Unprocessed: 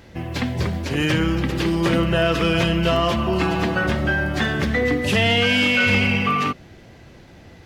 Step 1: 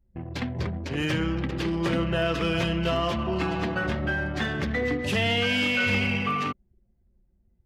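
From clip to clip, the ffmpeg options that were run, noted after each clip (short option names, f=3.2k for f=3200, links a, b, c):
-af "anlmdn=63.1,volume=-6.5dB"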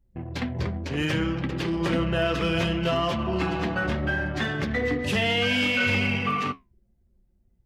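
-af "flanger=delay=6.9:depth=8:regen=-64:speed=0.66:shape=sinusoidal,volume=5dB"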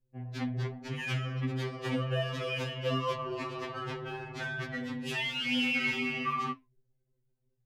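-af "afftfilt=real='re*2.45*eq(mod(b,6),0)':imag='im*2.45*eq(mod(b,6),0)':win_size=2048:overlap=0.75,volume=-5dB"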